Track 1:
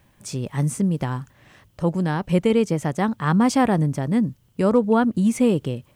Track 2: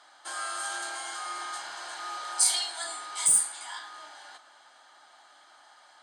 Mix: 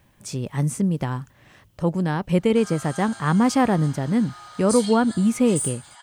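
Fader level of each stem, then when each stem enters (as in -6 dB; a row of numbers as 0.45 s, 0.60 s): -0.5 dB, -6.0 dB; 0.00 s, 2.30 s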